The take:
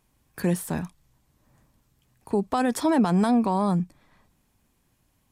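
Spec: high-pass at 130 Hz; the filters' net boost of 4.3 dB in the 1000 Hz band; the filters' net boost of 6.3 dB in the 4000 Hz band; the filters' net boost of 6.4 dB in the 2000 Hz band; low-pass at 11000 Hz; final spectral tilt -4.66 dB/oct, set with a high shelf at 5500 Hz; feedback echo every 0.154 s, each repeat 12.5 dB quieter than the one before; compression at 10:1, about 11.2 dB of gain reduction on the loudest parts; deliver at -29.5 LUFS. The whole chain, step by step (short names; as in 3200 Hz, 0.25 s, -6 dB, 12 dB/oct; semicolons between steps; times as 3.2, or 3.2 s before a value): HPF 130 Hz; LPF 11000 Hz; bell 1000 Hz +4 dB; bell 2000 Hz +5.5 dB; bell 4000 Hz +3 dB; high shelf 5500 Hz +7.5 dB; compressor 10:1, threshold -27 dBFS; feedback echo 0.154 s, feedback 24%, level -12.5 dB; gain +3 dB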